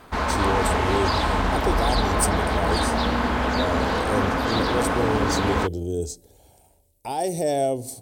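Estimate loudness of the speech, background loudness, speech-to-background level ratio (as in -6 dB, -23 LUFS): -28.0 LUFS, -23.0 LUFS, -5.0 dB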